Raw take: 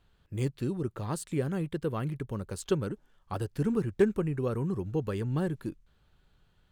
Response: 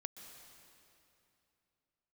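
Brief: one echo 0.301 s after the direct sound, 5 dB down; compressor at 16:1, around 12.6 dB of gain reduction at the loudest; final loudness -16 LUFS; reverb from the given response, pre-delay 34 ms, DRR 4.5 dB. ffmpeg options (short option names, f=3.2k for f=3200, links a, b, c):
-filter_complex "[0:a]acompressor=threshold=-31dB:ratio=16,aecho=1:1:301:0.562,asplit=2[a][b];[1:a]atrim=start_sample=2205,adelay=34[c];[b][c]afir=irnorm=-1:irlink=0,volume=-1dB[d];[a][d]amix=inputs=2:normalize=0,volume=19.5dB"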